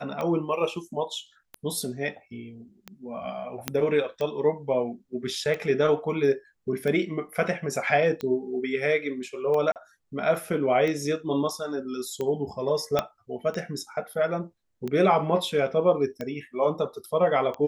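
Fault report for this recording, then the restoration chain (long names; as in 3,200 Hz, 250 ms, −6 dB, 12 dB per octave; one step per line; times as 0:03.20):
scratch tick 45 rpm −19 dBFS
0:03.68: click −8 dBFS
0:09.72–0:09.76: drop-out 38 ms
0:12.99: click −9 dBFS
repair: click removal
repair the gap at 0:09.72, 38 ms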